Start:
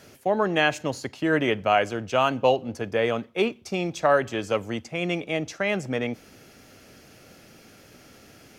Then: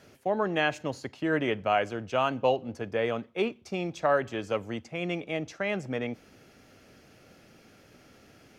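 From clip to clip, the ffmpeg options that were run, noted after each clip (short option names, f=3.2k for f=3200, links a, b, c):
-af "highshelf=f=5.6k:g=-8,volume=-4.5dB"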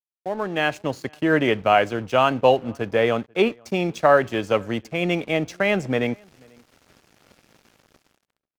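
-filter_complex "[0:a]dynaudnorm=f=150:g=9:m=10dB,aeval=exprs='sgn(val(0))*max(abs(val(0))-0.00668,0)':c=same,asplit=2[a][b];[b]adelay=489.8,volume=-29dB,highshelf=f=4k:g=-11[c];[a][c]amix=inputs=2:normalize=0"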